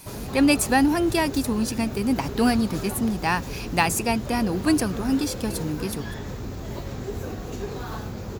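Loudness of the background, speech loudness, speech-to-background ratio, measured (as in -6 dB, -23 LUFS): -33.5 LUFS, -24.0 LUFS, 9.5 dB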